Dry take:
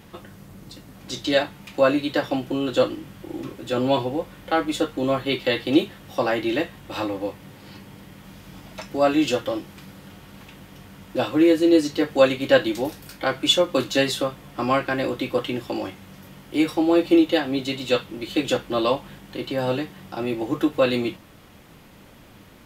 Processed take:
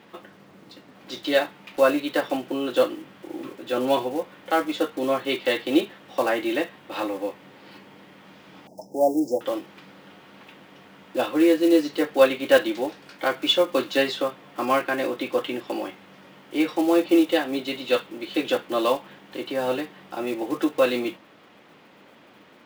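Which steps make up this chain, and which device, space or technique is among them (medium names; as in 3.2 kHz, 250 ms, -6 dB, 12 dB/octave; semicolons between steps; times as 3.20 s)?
early digital voice recorder (band-pass 280–3700 Hz; block-companded coder 5-bit); 8.67–9.41 s: Chebyshev band-stop 860–5300 Hz, order 5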